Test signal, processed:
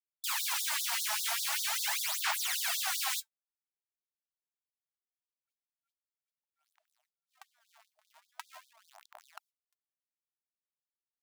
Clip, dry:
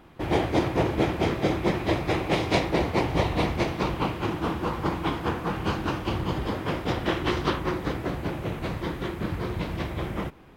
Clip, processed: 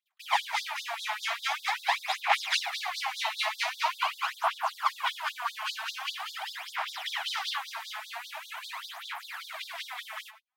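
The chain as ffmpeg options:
-af "aphaser=in_gain=1:out_gain=1:delay=4.7:decay=0.66:speed=0.44:type=sinusoidal,agate=range=-36dB:threshold=-40dB:ratio=16:detection=peak,afftfilt=real='re*gte(b*sr/1024,620*pow(3500/620,0.5+0.5*sin(2*PI*5.1*pts/sr)))':imag='im*gte(b*sr/1024,620*pow(3500/620,0.5+0.5*sin(2*PI*5.1*pts/sr)))':win_size=1024:overlap=0.75,volume=2dB"

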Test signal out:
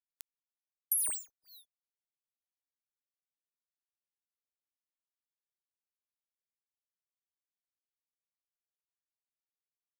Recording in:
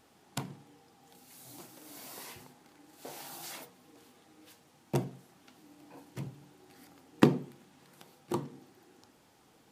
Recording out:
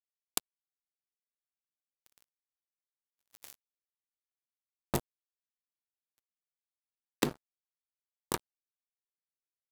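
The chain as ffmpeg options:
-af "aexciter=amount=2.1:drive=5.9:freq=3.3k,acrusher=bits=3:mix=0:aa=0.5,acompressor=threshold=-31dB:ratio=8,volume=4.5dB"

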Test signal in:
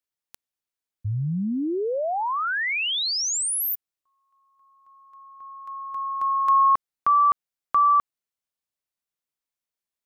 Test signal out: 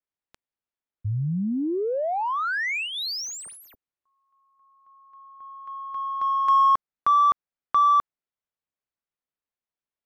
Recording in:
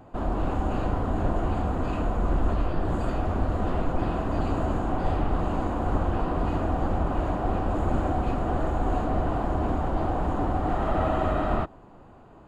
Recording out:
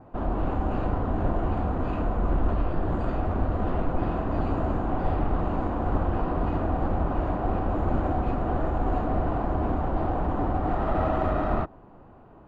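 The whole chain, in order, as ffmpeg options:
-af "adynamicequalizer=threshold=0.00224:dfrequency=3100:dqfactor=4.8:tfrequency=3100:tqfactor=4.8:attack=5:release=100:ratio=0.375:range=3.5:mode=cutabove:tftype=bell,adynamicsmooth=sensitivity=2:basefreq=3k"

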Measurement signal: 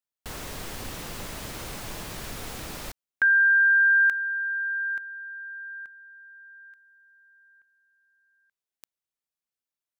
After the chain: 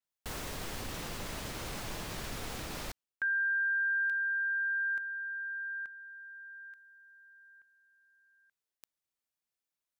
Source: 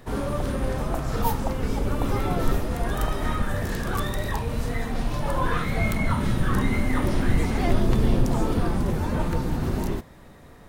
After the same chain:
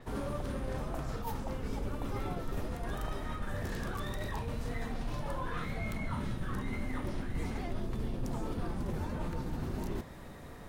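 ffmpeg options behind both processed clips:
-af "areverse,acompressor=threshold=-29dB:ratio=8:attack=0.13:release=447:knee=6:detection=peak,areverse,adynamicequalizer=threshold=0.00126:dfrequency=7700:dqfactor=0.7:tfrequency=7700:tqfactor=0.7:attack=5:release=100:ratio=0.375:range=2:mode=cutabove:tftype=highshelf"

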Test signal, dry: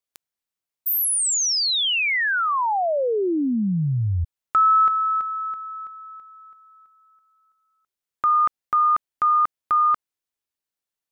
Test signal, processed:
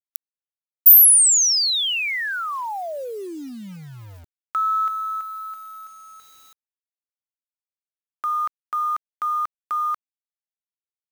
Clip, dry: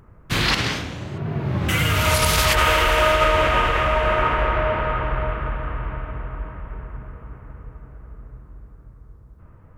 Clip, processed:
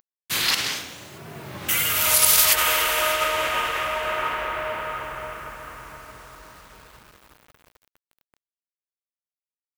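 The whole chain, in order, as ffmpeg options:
-af "aemphasis=mode=production:type=riaa,acrusher=bits=6:mix=0:aa=0.000001,volume=-6dB"

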